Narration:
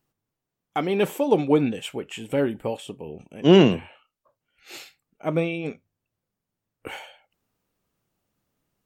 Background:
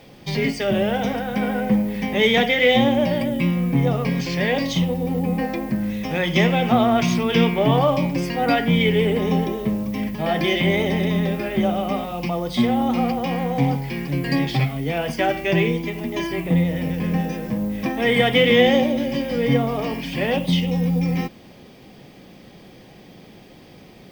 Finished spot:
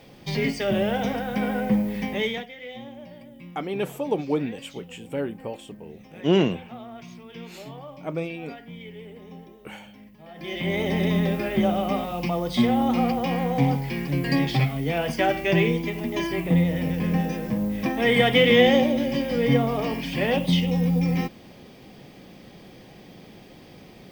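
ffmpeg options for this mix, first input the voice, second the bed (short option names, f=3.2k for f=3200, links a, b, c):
-filter_complex "[0:a]adelay=2800,volume=-5.5dB[a];[1:a]volume=18.5dB,afade=t=out:st=1.99:d=0.47:silence=0.1,afade=t=in:st=10.35:d=0.71:silence=0.0841395[b];[a][b]amix=inputs=2:normalize=0"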